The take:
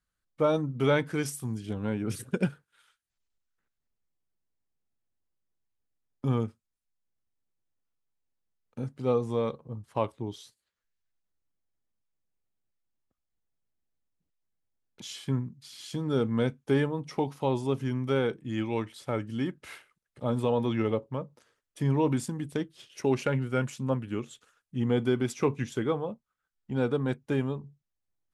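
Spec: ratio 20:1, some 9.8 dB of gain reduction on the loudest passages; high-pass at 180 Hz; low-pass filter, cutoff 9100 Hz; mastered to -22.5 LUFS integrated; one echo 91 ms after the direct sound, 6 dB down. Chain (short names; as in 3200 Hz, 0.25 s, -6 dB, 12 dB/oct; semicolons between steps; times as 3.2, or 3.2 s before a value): HPF 180 Hz; LPF 9100 Hz; compressor 20:1, threshold -30 dBFS; echo 91 ms -6 dB; gain +14.5 dB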